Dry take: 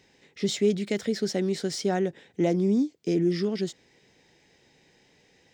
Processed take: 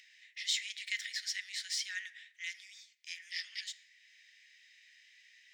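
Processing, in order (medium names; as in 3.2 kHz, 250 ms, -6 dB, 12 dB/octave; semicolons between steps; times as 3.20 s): Chebyshev high-pass 1.8 kHz, order 5; treble shelf 4.5 kHz -7.5 dB; upward compressor, threshold -56 dBFS; on a send at -13 dB: reverberation RT60 1.1 s, pre-delay 3 ms; on the sum: tape noise reduction on one side only decoder only; trim +4 dB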